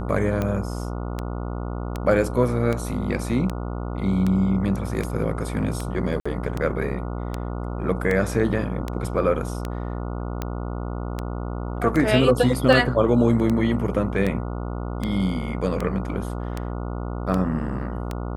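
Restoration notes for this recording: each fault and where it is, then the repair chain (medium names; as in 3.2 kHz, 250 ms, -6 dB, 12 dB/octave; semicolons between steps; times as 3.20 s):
buzz 60 Hz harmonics 24 -29 dBFS
tick 78 rpm -13 dBFS
6.20–6.25 s: dropout 55 ms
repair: de-click; de-hum 60 Hz, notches 24; interpolate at 6.20 s, 55 ms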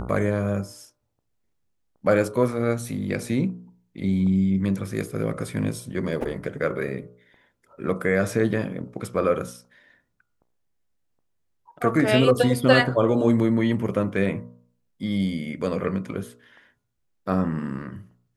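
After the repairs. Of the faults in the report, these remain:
nothing left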